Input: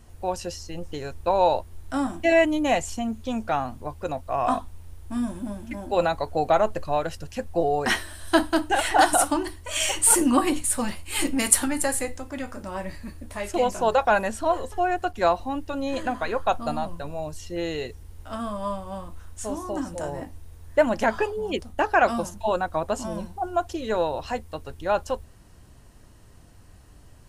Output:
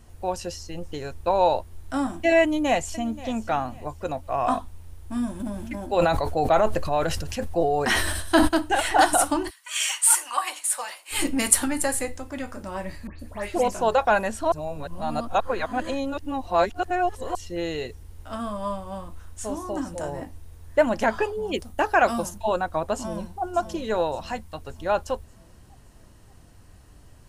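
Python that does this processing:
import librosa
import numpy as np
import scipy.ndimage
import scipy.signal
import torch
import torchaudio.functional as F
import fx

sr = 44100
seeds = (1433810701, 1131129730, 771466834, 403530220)

y = fx.echo_throw(x, sr, start_s=2.41, length_s=0.65, ms=530, feedback_pct=30, wet_db=-17.0)
y = fx.sustainer(y, sr, db_per_s=31.0, at=(5.39, 8.47), fade=0.02)
y = fx.highpass(y, sr, hz=fx.line((9.49, 1300.0), (11.11, 520.0)), slope=24, at=(9.49, 11.11), fade=0.02)
y = fx.dispersion(y, sr, late='highs', ms=127.0, hz=3000.0, at=(13.07, 13.68))
y = fx.high_shelf(y, sr, hz=8300.0, db=8.5, at=(21.53, 22.38))
y = fx.echo_throw(y, sr, start_s=22.95, length_s=0.47, ms=580, feedback_pct=50, wet_db=-10.0)
y = fx.peak_eq(y, sr, hz=420.0, db=-8.0, octaves=0.77, at=(24.15, 24.61))
y = fx.edit(y, sr, fx.reverse_span(start_s=14.52, length_s=2.83), tone=tone)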